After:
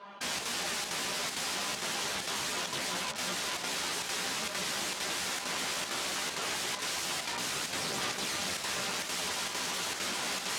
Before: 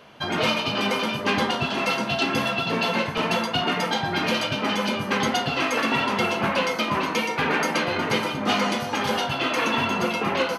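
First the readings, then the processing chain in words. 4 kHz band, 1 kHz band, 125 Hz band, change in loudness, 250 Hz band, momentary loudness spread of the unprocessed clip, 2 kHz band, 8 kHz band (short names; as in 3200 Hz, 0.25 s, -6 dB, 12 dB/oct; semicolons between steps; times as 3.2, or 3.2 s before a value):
-6.0 dB, -13.5 dB, -17.0 dB, -9.0 dB, -18.5 dB, 2 LU, -10.5 dB, +4.0 dB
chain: bell 1000 Hz +10 dB 1.2 oct; in parallel at +1 dB: limiter -14 dBFS, peak gain reduction 9 dB; on the sum: resonator 200 Hz, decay 0.18 s, harmonics all, mix 100%; sine folder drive 7 dB, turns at -9 dBFS; added harmonics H 3 -10 dB, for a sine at -8.5 dBFS; wrapped overs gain 23.5 dB; chorus voices 4, 1.4 Hz, delay 14 ms, depth 3 ms; chopper 2.2 Hz, depth 60%, duty 85%; BPF 130–7300 Hz; fast leveller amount 50%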